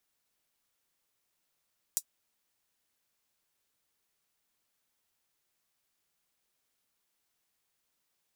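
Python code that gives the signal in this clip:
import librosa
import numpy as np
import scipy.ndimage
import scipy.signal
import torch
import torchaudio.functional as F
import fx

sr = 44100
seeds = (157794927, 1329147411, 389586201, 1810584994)

y = fx.drum_hat(sr, length_s=0.24, from_hz=6700.0, decay_s=0.07)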